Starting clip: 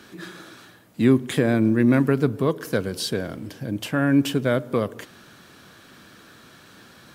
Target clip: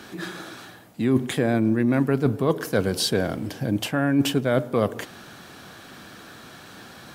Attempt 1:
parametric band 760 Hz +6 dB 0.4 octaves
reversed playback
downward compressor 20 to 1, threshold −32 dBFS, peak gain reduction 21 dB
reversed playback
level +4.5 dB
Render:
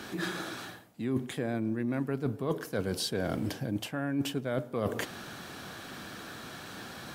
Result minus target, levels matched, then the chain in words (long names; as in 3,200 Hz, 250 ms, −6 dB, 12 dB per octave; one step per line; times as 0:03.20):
downward compressor: peak gain reduction +11 dB
parametric band 760 Hz +6 dB 0.4 octaves
reversed playback
downward compressor 20 to 1, threshold −20.5 dBFS, peak gain reduction 10.5 dB
reversed playback
level +4.5 dB